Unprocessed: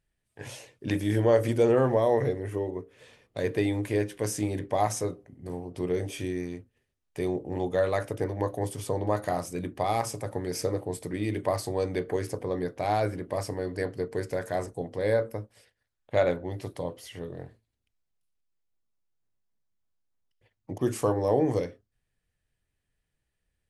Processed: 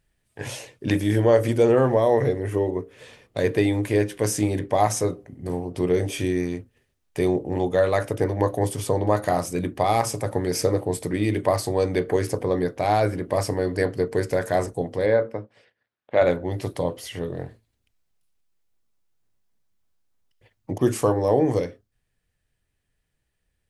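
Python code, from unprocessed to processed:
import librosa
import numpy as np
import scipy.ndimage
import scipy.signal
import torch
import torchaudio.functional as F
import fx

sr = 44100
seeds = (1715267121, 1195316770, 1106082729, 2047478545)

p1 = fx.bandpass_edges(x, sr, low_hz=fx.line((15.05, 120.0), (16.2, 200.0)), high_hz=3100.0, at=(15.05, 16.2), fade=0.02)
p2 = fx.rider(p1, sr, range_db=4, speed_s=0.5)
y = p1 + (p2 * 10.0 ** (0.0 / 20.0))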